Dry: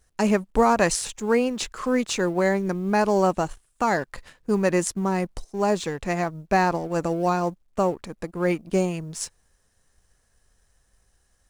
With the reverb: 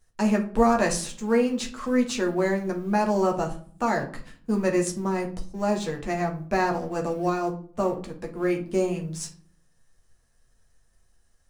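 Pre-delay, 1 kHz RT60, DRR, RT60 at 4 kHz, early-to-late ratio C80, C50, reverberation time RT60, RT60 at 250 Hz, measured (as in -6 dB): 8 ms, 0.45 s, 1.0 dB, 0.30 s, 17.5 dB, 11.5 dB, 0.50 s, 0.85 s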